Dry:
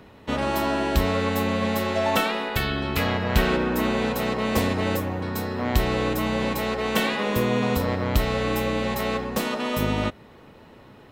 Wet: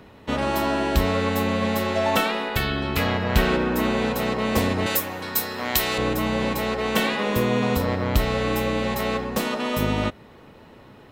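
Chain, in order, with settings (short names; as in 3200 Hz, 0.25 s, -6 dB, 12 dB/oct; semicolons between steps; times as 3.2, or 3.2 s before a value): 4.86–5.98 tilt +3.5 dB/oct; gain +1 dB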